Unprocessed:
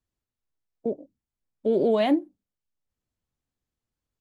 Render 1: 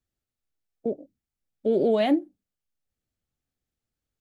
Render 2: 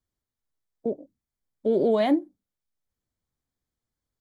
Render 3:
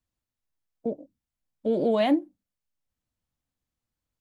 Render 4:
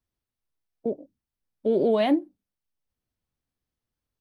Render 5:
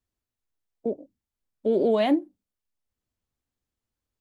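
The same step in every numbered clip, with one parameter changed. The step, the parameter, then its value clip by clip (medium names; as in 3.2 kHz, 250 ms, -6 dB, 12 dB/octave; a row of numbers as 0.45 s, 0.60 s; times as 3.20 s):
band-stop, frequency: 1 kHz, 2.7 kHz, 400 Hz, 7.1 kHz, 150 Hz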